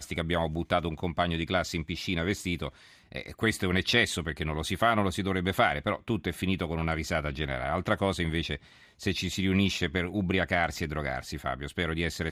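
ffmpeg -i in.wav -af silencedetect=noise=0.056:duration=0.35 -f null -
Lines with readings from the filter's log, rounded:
silence_start: 2.68
silence_end: 3.16 | silence_duration: 0.48
silence_start: 8.55
silence_end: 9.06 | silence_duration: 0.51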